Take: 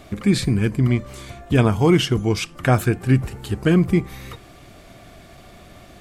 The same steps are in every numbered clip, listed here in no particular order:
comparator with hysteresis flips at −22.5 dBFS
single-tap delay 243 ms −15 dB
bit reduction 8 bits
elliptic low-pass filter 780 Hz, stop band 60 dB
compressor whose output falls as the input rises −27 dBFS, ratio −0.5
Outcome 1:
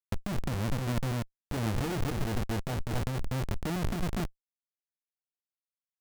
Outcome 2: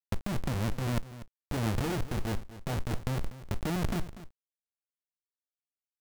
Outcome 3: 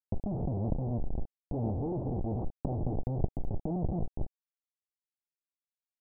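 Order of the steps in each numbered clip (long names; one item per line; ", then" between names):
elliptic low-pass filter, then bit reduction, then comparator with hysteresis, then single-tap delay, then compressor whose output falls as the input rises
elliptic low-pass filter, then comparator with hysteresis, then compressor whose output falls as the input rises, then bit reduction, then single-tap delay
single-tap delay, then comparator with hysteresis, then bit reduction, then compressor whose output falls as the input rises, then elliptic low-pass filter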